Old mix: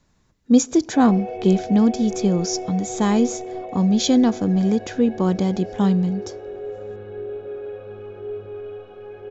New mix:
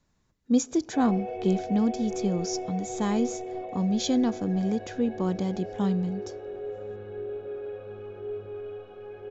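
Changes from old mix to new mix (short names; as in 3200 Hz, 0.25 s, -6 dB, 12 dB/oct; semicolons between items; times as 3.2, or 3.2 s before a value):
speech -8.0 dB; background -4.0 dB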